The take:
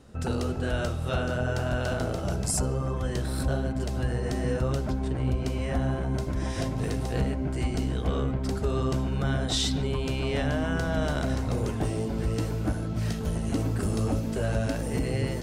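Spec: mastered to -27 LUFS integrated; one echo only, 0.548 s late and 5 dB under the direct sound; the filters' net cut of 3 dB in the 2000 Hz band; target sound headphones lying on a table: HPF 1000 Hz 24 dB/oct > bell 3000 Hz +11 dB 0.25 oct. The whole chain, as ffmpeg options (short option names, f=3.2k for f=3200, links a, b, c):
-af "highpass=f=1k:w=0.5412,highpass=f=1k:w=1.3066,equalizer=f=2k:t=o:g=-5.5,equalizer=f=3k:t=o:w=0.25:g=11,aecho=1:1:548:0.562,volume=9.5dB"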